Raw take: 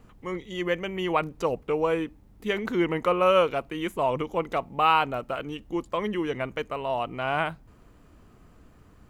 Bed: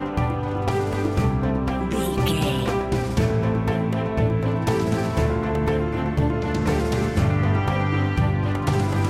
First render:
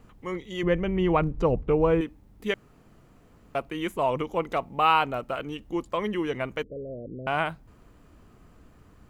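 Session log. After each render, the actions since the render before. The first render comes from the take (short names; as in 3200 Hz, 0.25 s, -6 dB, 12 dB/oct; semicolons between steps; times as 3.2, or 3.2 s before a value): 0.63–2.01 RIAA curve playback; 2.54–3.55 room tone; 6.63–7.27 steep low-pass 550 Hz 72 dB/oct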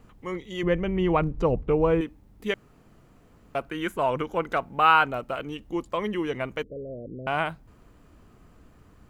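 3.61–5.08 bell 1500 Hz +11.5 dB 0.3 oct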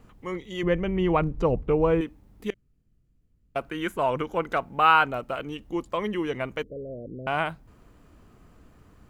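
2.5–3.56 passive tone stack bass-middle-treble 10-0-1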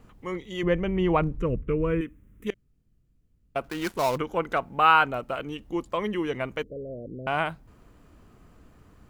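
1.37–2.47 fixed phaser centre 1900 Hz, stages 4; 3.64–4.18 switching dead time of 0.13 ms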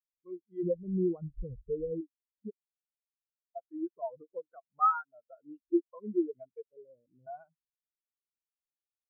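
compressor 3:1, threshold -30 dBFS, peak gain reduction 12.5 dB; spectral expander 4:1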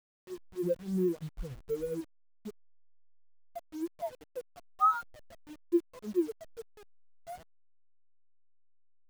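level-crossing sampler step -46.5 dBFS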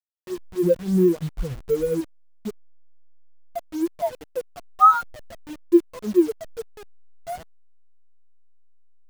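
gain +12 dB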